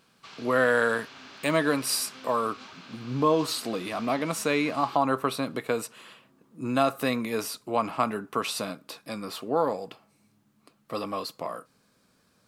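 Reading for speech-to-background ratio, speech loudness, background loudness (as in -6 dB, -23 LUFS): 17.5 dB, -28.0 LUFS, -45.5 LUFS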